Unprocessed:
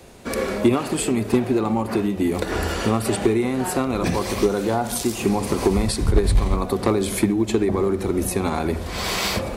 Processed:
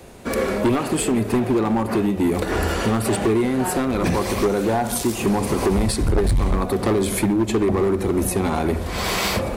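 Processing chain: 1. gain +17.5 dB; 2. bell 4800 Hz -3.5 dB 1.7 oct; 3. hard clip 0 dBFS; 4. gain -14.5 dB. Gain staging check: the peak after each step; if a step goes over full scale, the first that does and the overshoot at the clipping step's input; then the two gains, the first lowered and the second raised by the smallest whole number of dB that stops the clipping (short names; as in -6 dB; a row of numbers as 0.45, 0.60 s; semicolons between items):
+10.0, +10.0, 0.0, -14.5 dBFS; step 1, 10.0 dB; step 1 +7.5 dB, step 4 -4.5 dB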